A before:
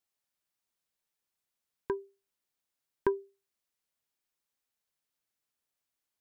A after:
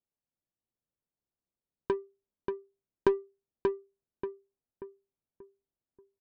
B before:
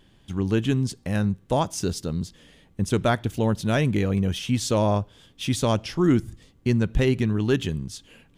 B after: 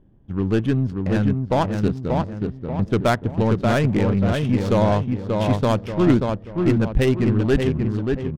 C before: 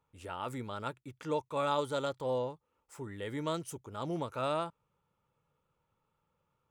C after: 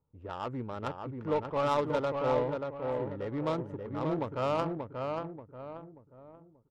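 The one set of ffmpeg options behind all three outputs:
-filter_complex "[0:a]asplit=2[s0][s1];[s1]adelay=584,lowpass=f=3000:p=1,volume=0.631,asplit=2[s2][s3];[s3]adelay=584,lowpass=f=3000:p=1,volume=0.43,asplit=2[s4][s5];[s5]adelay=584,lowpass=f=3000:p=1,volume=0.43,asplit=2[s6][s7];[s7]adelay=584,lowpass=f=3000:p=1,volume=0.43,asplit=2[s8][s9];[s9]adelay=584,lowpass=f=3000:p=1,volume=0.43[s10];[s0][s2][s4][s6][s8][s10]amix=inputs=6:normalize=0,aeval=exprs='0.447*(cos(1*acos(clip(val(0)/0.447,-1,1)))-cos(1*PI/2))+0.0316*(cos(3*acos(clip(val(0)/0.447,-1,1)))-cos(3*PI/2))+0.0224*(cos(4*acos(clip(val(0)/0.447,-1,1)))-cos(4*PI/2))+0.02*(cos(5*acos(clip(val(0)/0.447,-1,1)))-cos(5*PI/2))':c=same,adynamicsmooth=sensitivity=3:basefreq=570,volume=1.5"

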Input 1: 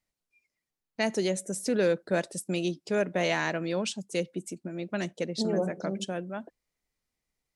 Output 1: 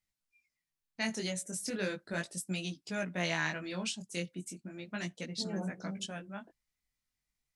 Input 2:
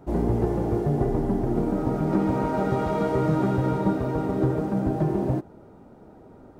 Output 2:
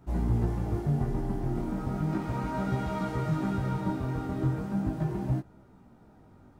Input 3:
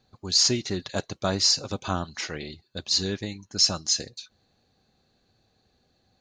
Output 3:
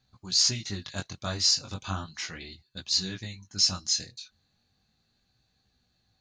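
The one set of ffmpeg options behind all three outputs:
-af "equalizer=f=470:w=0.81:g=-11.5,flanger=delay=15.5:depth=7.5:speed=0.36,volume=1.12"

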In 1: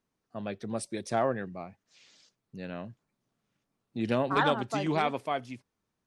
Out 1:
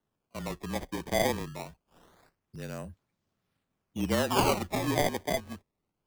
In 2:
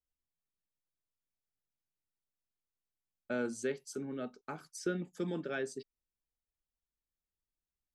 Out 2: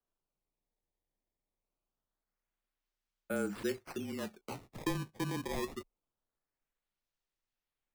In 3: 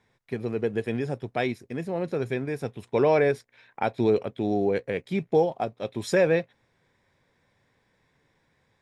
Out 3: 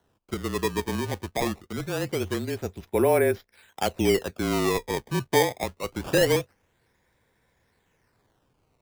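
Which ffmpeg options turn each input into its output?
-af "acrusher=samples=18:mix=1:aa=0.000001:lfo=1:lforange=28.8:lforate=0.24,afreqshift=-30"

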